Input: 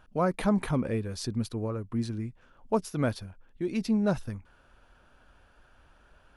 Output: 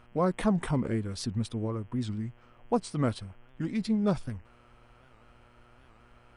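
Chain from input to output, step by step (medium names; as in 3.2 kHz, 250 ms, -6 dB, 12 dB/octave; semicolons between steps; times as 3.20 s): formant shift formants -2 st; mains buzz 120 Hz, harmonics 27, -62 dBFS -4 dB/octave; warped record 78 rpm, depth 160 cents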